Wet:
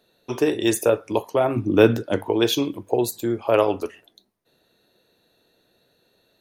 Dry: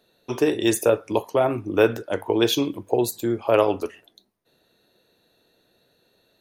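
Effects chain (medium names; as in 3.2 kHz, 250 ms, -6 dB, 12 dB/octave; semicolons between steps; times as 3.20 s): 1.56–2.29 s: ten-band graphic EQ 125 Hz +8 dB, 250 Hz +8 dB, 4 kHz +5 dB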